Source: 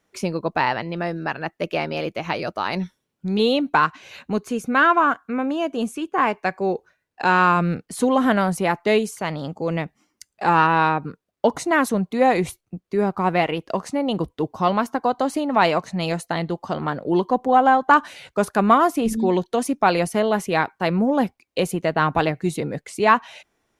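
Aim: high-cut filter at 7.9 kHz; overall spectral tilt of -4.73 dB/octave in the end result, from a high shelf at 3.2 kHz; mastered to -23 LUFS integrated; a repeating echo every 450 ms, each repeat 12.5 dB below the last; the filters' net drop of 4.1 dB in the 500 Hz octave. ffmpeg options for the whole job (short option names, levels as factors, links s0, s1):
-af "lowpass=7900,equalizer=f=500:t=o:g=-5,highshelf=f=3200:g=-7.5,aecho=1:1:450|900|1350:0.237|0.0569|0.0137,volume=1.06"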